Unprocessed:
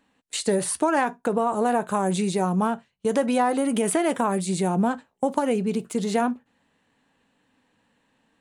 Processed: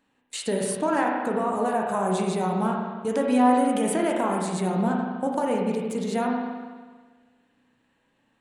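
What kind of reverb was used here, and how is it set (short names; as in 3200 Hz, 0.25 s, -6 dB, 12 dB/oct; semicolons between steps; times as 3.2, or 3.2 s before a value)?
spring tank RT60 1.5 s, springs 32/40 ms, chirp 75 ms, DRR -0.5 dB; gain -4.5 dB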